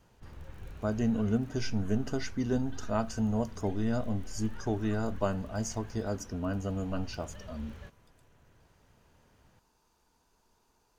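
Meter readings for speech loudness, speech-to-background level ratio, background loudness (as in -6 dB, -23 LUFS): -33.5 LUFS, 16.5 dB, -50.0 LUFS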